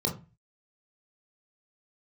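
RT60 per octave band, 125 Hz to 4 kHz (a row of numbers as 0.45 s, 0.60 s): 0.50 s, 0.40 s, 0.30 s, 0.30 s, 0.30 s, 0.20 s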